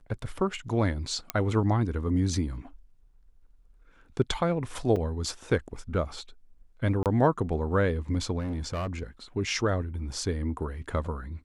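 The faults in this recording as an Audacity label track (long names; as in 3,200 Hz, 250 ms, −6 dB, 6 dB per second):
1.300000	1.300000	click −11 dBFS
4.960000	4.960000	drop-out 4.9 ms
7.030000	7.060000	drop-out 28 ms
8.380000	9.030000	clipping −27.5 dBFS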